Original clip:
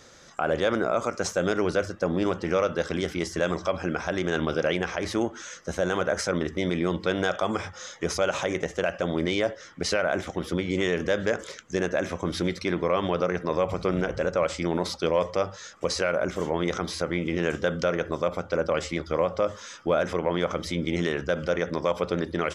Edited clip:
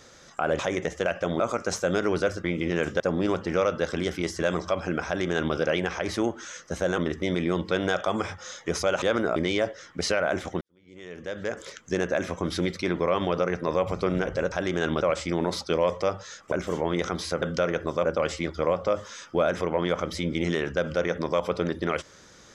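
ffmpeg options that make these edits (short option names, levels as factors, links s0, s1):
-filter_complex "[0:a]asplit=14[s0][s1][s2][s3][s4][s5][s6][s7][s8][s9][s10][s11][s12][s13];[s0]atrim=end=0.592[s14];[s1]atrim=start=8.368:end=9.182[s15];[s2]atrim=start=0.928:end=1.972[s16];[s3]atrim=start=17.108:end=17.672[s17];[s4]atrim=start=1.968:end=5.952[s18];[s5]atrim=start=6.328:end=8.372[s19];[s6]atrim=start=0.588:end=0.932[s20];[s7]atrim=start=9.178:end=10.43,asetpts=PTS-STARTPTS,afade=t=out:st=1.248:d=0.004:c=hsin[s21];[s8]atrim=start=10.43:end=14.342,asetpts=PTS-STARTPTS,afade=t=in:d=1.18:c=qua[s22];[s9]atrim=start=4.028:end=4.522[s23];[s10]atrim=start=14.338:end=15.852[s24];[s11]atrim=start=16.208:end=17.112[s25];[s12]atrim=start=17.668:end=18.302[s26];[s13]atrim=start=18.568[s27];[s14][s15]acrossfade=d=0.004:c1=hsin:c2=hsin[s28];[s28][s16]acrossfade=d=0.004:c1=hsin:c2=hsin[s29];[s29][s17]acrossfade=d=0.004:c1=hsin:c2=hsin[s30];[s30][s18]acrossfade=d=0.004:c1=hsin:c2=hsin[s31];[s31][s19]acrossfade=d=0.004:c1=hsin:c2=hsin[s32];[s32][s20]acrossfade=d=0.004:c1=hsin:c2=hsin[s33];[s21][s22]concat=n=2:v=0:a=1[s34];[s33][s34]acrossfade=d=0.004:c1=hsin:c2=hsin[s35];[s35][s23]acrossfade=d=0.004:c1=hsin:c2=hsin[s36];[s36][s24]acrossfade=d=0.004:c1=hsin:c2=hsin[s37];[s37][s25]acrossfade=d=0.004:c1=hsin:c2=hsin[s38];[s38][s26]acrossfade=d=0.004:c1=hsin:c2=hsin[s39];[s39][s27]acrossfade=d=0.004:c1=hsin:c2=hsin"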